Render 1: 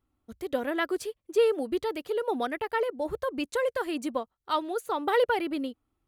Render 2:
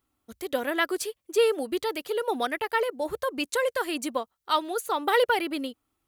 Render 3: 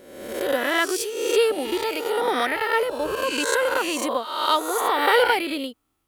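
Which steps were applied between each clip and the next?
spectral tilt +2 dB per octave; level +3 dB
peak hold with a rise ahead of every peak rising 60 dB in 1.01 s; level +1.5 dB

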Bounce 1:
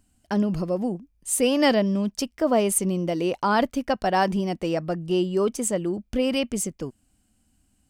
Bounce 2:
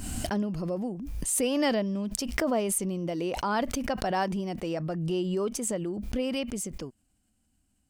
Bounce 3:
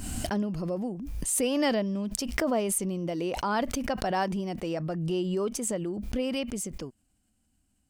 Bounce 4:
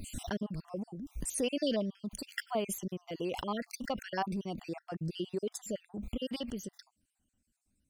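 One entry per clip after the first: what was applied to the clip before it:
background raised ahead of every attack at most 28 dB per second; level −7 dB
no processing that can be heard
time-frequency cells dropped at random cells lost 51%; dynamic equaliser 3,400 Hz, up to +7 dB, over −59 dBFS, Q 3.4; level −4.5 dB

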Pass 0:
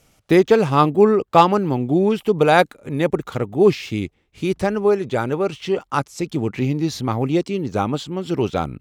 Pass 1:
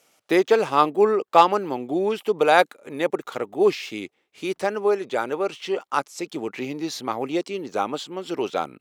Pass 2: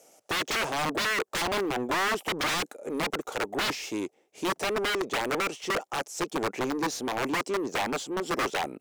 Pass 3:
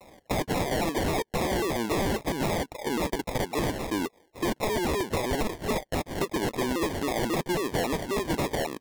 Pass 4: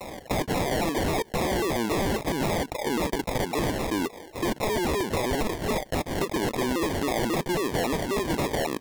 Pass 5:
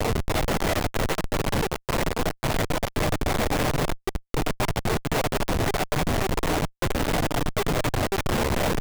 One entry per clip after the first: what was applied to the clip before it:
high-pass filter 390 Hz 12 dB per octave; level −1.5 dB
flat-topped bell 2,100 Hz −14.5 dB 2.5 octaves; wrap-around overflow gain 22.5 dB; mid-hump overdrive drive 18 dB, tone 3,700 Hz, clips at −22.5 dBFS
downward compressor, threshold −31 dBFS, peak gain reduction 6 dB; decimation without filtering 32×; pitch modulation by a square or saw wave saw down 3.7 Hz, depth 250 cents; level +6 dB
envelope flattener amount 50%
linear-prediction vocoder at 8 kHz pitch kept; multi-voice chorus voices 4, 0.7 Hz, delay 10 ms, depth 3.6 ms; comparator with hysteresis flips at −40.5 dBFS; level +5.5 dB

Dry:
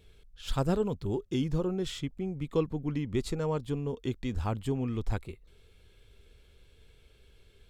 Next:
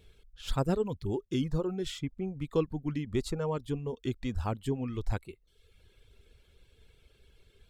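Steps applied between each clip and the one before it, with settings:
reverb reduction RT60 0.78 s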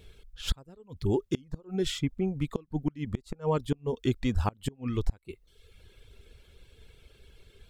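gate with flip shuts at −21 dBFS, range −29 dB
level +6 dB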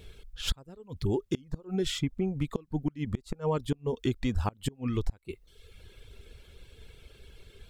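downward compressor 2 to 1, threshold −32 dBFS, peak gain reduction 7 dB
level +3.5 dB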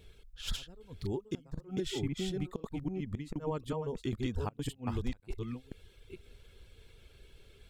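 delay that plays each chunk backwards 520 ms, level −2 dB
level −7 dB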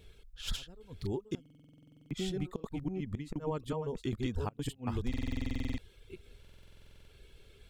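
buffer that repeats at 0:01.41/0:05.09/0:06.40, samples 2,048, times 14

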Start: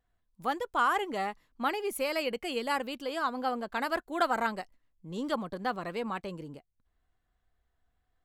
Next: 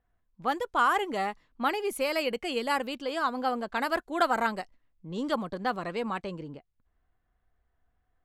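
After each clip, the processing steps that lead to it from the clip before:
low-pass that shuts in the quiet parts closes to 2,300 Hz, open at −28.5 dBFS
level +2.5 dB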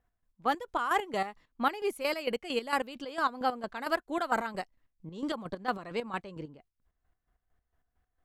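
square-wave tremolo 4.4 Hz, depth 65%, duty 40%

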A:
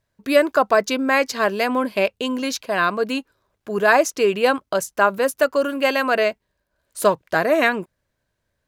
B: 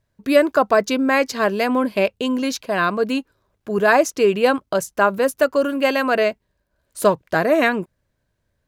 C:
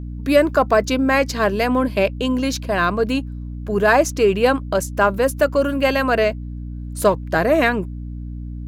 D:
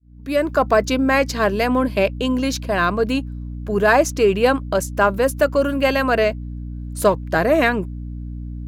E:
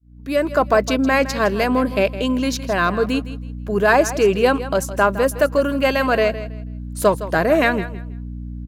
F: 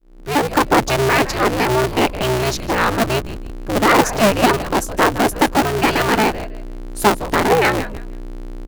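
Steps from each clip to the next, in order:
low-shelf EQ 390 Hz +6.5 dB; level −1 dB
mains hum 60 Hz, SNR 11 dB; in parallel at −11 dB: soft clipping −15 dBFS, distortion −10 dB; on the sum: level −1 dB
fade in at the beginning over 0.67 s
repeating echo 162 ms, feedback 23%, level −14 dB
sub-harmonics by changed cycles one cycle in 2, inverted; level +1.5 dB

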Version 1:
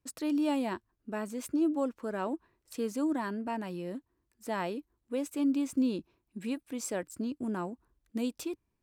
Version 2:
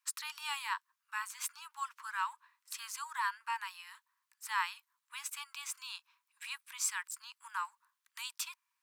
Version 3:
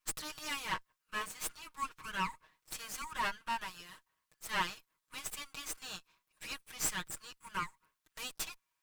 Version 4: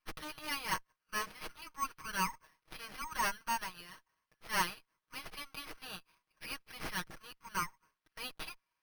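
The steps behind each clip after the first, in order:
Butterworth high-pass 940 Hz 96 dB per octave; level +5.5 dB
lower of the sound and its delayed copy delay 6.4 ms; level +1.5 dB
bad sample-rate conversion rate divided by 6×, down filtered, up hold; level +1.5 dB

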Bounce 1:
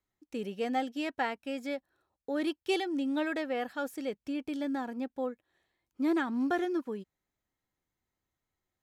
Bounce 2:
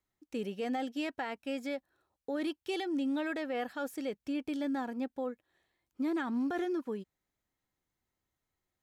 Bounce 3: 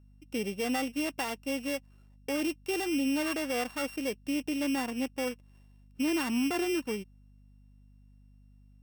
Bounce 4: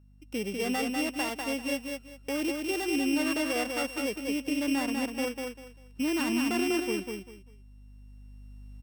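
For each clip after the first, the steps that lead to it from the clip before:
brickwall limiter −27 dBFS, peak gain reduction 7.5 dB
samples sorted by size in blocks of 16 samples; mains hum 50 Hz, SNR 24 dB; level +3.5 dB
camcorder AGC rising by 5.9 dB per second; repeating echo 197 ms, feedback 24%, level −4 dB

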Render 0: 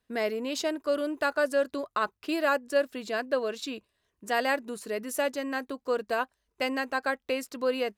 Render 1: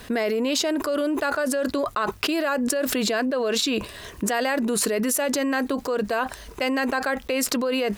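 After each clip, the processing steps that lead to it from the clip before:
envelope flattener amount 100%
level −3 dB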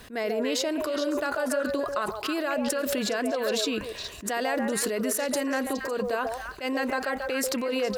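echo through a band-pass that steps 139 ms, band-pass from 610 Hz, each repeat 1.4 octaves, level −1 dB
surface crackle 98 per second −45 dBFS
level that may rise only so fast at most 230 dB per second
level −5 dB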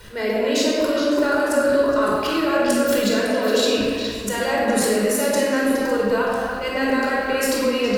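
rectangular room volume 2,100 cubic metres, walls mixed, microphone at 4.7 metres

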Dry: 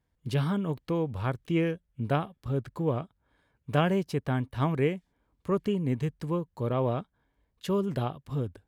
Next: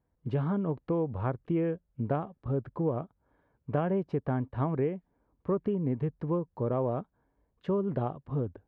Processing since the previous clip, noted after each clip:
Bessel low-pass filter 820 Hz, order 2
low-shelf EQ 240 Hz −7 dB
downward compressor 4 to 1, threshold −31 dBFS, peak gain reduction 7 dB
level +5.5 dB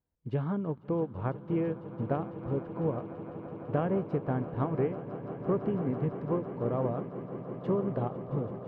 on a send: echo that builds up and dies away 167 ms, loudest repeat 8, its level −14 dB
on the sum: expander for the loud parts 1.5 to 1, over −43 dBFS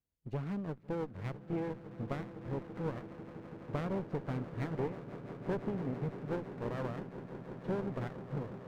lower of the sound and its delayed copy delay 0.46 ms
level −5.5 dB

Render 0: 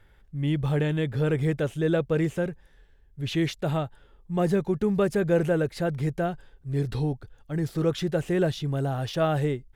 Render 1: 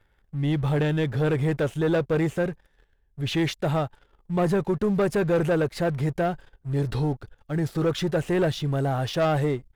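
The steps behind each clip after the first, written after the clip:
parametric band 1,000 Hz +3.5 dB 2.1 octaves
leveller curve on the samples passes 2
level −5 dB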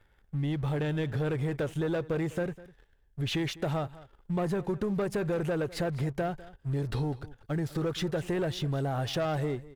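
downward compressor, threshold −28 dBFS, peak gain reduction 9 dB
single-tap delay 202 ms −19 dB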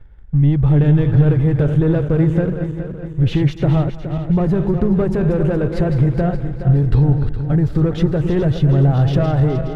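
feedback delay that plays each chunk backwards 209 ms, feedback 68%, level −8 dB
RIAA equalisation playback
level +6.5 dB

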